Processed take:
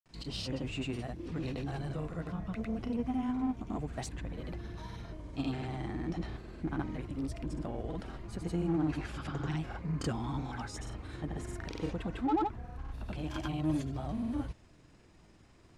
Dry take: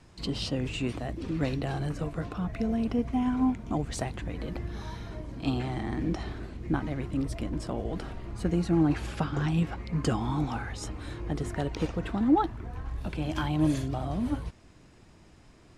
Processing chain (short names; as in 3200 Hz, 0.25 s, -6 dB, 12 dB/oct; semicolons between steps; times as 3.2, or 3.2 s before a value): grains, grains 20/s, pitch spread up and down by 0 st; in parallel at -3 dB: soft clip -30.5 dBFS, distortion -8 dB; on the sum: gain -8 dB